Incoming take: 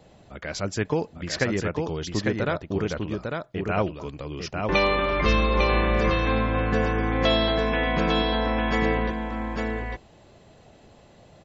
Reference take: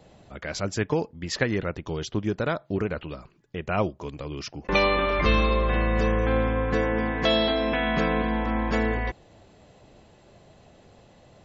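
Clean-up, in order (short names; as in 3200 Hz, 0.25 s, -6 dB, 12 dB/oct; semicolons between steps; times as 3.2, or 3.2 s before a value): inverse comb 0.85 s -4 dB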